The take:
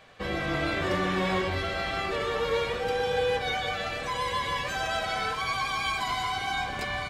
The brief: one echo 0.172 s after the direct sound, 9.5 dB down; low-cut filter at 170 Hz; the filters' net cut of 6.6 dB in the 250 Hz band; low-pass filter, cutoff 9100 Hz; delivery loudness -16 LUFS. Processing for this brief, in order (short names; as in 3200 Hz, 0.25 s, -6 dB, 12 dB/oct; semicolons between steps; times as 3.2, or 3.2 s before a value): HPF 170 Hz; LPF 9100 Hz; bell 250 Hz -9 dB; echo 0.172 s -9.5 dB; gain +13 dB